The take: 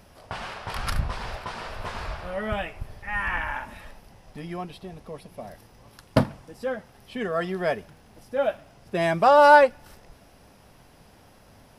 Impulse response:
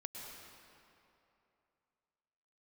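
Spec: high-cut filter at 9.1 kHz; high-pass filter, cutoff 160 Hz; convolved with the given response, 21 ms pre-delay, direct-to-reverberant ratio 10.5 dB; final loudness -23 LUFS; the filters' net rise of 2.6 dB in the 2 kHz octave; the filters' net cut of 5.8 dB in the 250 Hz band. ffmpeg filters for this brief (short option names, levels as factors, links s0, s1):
-filter_complex "[0:a]highpass=160,lowpass=9100,equalizer=f=250:t=o:g=-6.5,equalizer=f=2000:t=o:g=4,asplit=2[s0][s1];[1:a]atrim=start_sample=2205,adelay=21[s2];[s1][s2]afir=irnorm=-1:irlink=0,volume=0.376[s3];[s0][s3]amix=inputs=2:normalize=0,volume=1.19"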